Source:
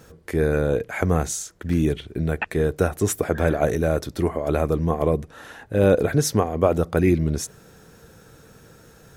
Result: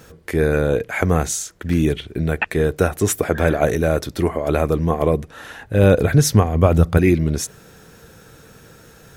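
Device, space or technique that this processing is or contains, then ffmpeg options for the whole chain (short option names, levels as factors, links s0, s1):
presence and air boost: -filter_complex "[0:a]asettb=1/sr,asplit=3[s0][s1][s2];[s0]atrim=end=5.314[s3];[s1]atrim=start=5.31:end=6.98,asetpts=PTS-STARTPTS,afade=t=in:d=0.004:c=qsin,afade=t=out:st=1.666:d=0.004:c=qsin,asubboost=boost=6.5:cutoff=200[s4];[s2]atrim=start=6.976[s5];[s3][s4]acrossfade=d=0.004:c1=hsin:c2=qsin[s6];[s6][s5]acrossfade=d=0.004:c1=qsin:c2=hsin,equalizer=f=2600:t=o:w=1.7:g=3.5,highshelf=f=12000:g=4,volume=1.41"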